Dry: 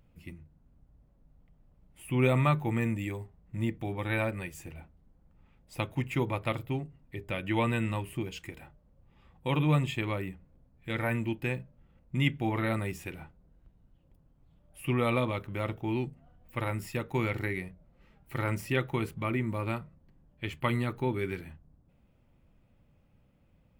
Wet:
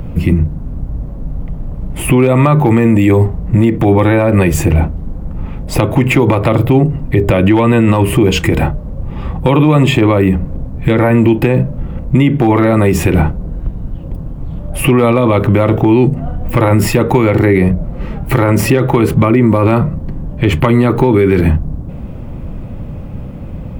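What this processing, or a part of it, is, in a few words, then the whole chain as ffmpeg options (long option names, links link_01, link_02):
mastering chain: -filter_complex "[0:a]equalizer=frequency=1100:width_type=o:width=0.24:gain=2.5,acrossover=split=250|1200[link_01][link_02][link_03];[link_01]acompressor=threshold=-43dB:ratio=4[link_04];[link_02]acompressor=threshold=-33dB:ratio=4[link_05];[link_03]acompressor=threshold=-38dB:ratio=4[link_06];[link_04][link_05][link_06]amix=inputs=3:normalize=0,acompressor=threshold=-39dB:ratio=2,tiltshelf=frequency=1100:gain=7,asoftclip=type=hard:threshold=-25.5dB,alimiter=level_in=34.5dB:limit=-1dB:release=50:level=0:latency=1,volume=-1dB"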